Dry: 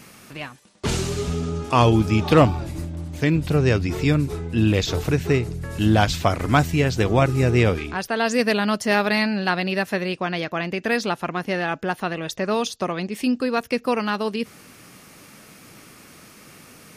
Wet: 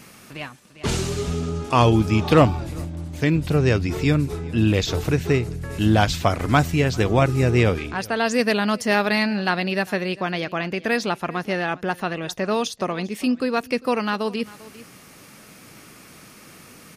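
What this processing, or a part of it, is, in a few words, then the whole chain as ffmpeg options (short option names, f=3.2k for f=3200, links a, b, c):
ducked delay: -filter_complex "[0:a]asplit=3[a][b][c];[b]adelay=399,volume=-8dB[d];[c]apad=whole_len=765882[e];[d][e]sidechaincompress=threshold=-33dB:ratio=6:attack=16:release=1430[f];[a][f]amix=inputs=2:normalize=0"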